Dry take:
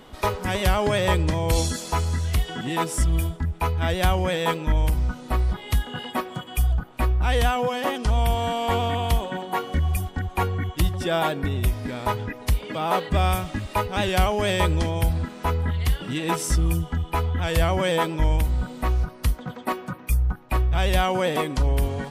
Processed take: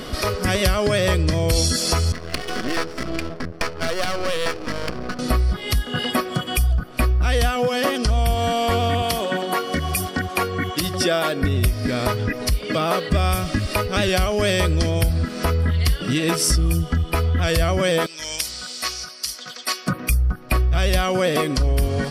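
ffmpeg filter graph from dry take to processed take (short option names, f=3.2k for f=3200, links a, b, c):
-filter_complex "[0:a]asettb=1/sr,asplit=3[a][b][c];[a]atrim=end=2.124[d];[b]atrim=start=2.12:end=5.19,asetpts=PTS-STARTPTS,afade=t=in:d=0.004:c=qsin,afade=t=out:st=3.066:d=0.004:c=qsin,highpass=260,lowpass=5.8k,adynamicsmooth=sensitivity=6.5:basefreq=730,aeval=exprs='max(val(0),0)':c=same[e];[c]atrim=start=5.186[f];[d][e]acrossfade=d=0.004:c1=hsin:c2=qsin[g];[g][f]acrossfade=d=0.004:c1=qsin:c2=hsin,asettb=1/sr,asplit=3[h][i][j];[h]atrim=end=9.024[k];[i]atrim=start=9.02:end=11.42,asetpts=PTS-STARTPTS,afade=t=in:d=0.004:c=qsin,afade=t=out:st=2.396:d=0.004:c=qsin,highpass=120,lowshelf=f=160:g=-9[l];[j]atrim=start=11.416[m];[k][l]acrossfade=d=0.004:c1=hsin:c2=qsin[n];[n][m]acrossfade=d=0.004:c1=qsin:c2=hsin,asettb=1/sr,asplit=3[o][p][q];[o]atrim=end=18.064[r];[p]atrim=start=18.06:end=19.87,asetpts=PTS-STARTPTS,afade=t=in:d=0.004:c=qsin,afade=t=out:st=1.806:d=0.004:c=qsin,acontrast=29,bandpass=f=6k:t=q:w=1.5[s];[q]atrim=start=19.866[t];[r][s]acrossfade=d=0.004:c1=hsin:c2=qsin[u];[u][t]acrossfade=d=0.004:c1=qsin:c2=hsin,acompressor=threshold=-35dB:ratio=3,superequalizer=9b=0.355:14b=2.51:16b=1.41,alimiter=level_in=21.5dB:limit=-1dB:release=50:level=0:latency=1,volume=-6.5dB"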